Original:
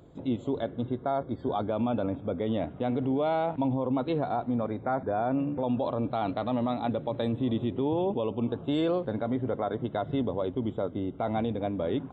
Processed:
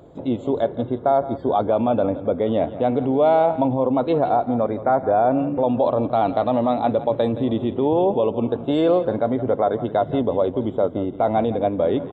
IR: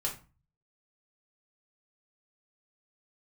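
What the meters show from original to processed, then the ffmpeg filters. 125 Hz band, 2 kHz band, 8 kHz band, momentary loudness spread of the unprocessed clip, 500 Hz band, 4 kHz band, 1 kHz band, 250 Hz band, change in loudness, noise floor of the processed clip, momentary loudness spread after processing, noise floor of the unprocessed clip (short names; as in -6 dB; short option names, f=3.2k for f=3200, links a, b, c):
+4.5 dB, +6.0 dB, n/a, 4 LU, +11.0 dB, +4.5 dB, +11.0 dB, +6.5 dB, +9.5 dB, -35 dBFS, 4 LU, -45 dBFS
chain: -af "equalizer=f=620:w=0.85:g=8,aecho=1:1:169:0.188,volume=4dB"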